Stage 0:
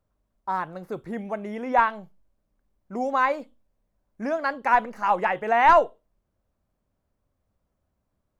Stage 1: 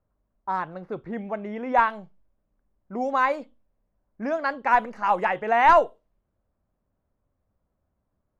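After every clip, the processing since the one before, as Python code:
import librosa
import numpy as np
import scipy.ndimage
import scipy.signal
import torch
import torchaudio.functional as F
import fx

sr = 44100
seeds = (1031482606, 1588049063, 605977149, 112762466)

y = fx.env_lowpass(x, sr, base_hz=1800.0, full_db=-18.0)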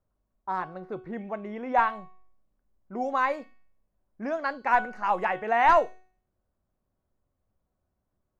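y = fx.comb_fb(x, sr, f0_hz=370.0, decay_s=0.54, harmonics='all', damping=0.0, mix_pct=70)
y = F.gain(torch.from_numpy(y), 6.5).numpy()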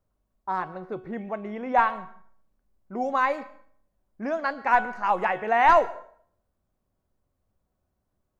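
y = fx.rev_plate(x, sr, seeds[0], rt60_s=0.57, hf_ratio=0.75, predelay_ms=105, drr_db=19.0)
y = F.gain(torch.from_numpy(y), 2.0).numpy()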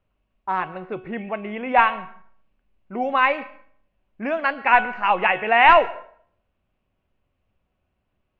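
y = fx.lowpass_res(x, sr, hz=2700.0, q=4.7)
y = F.gain(torch.from_numpy(y), 3.0).numpy()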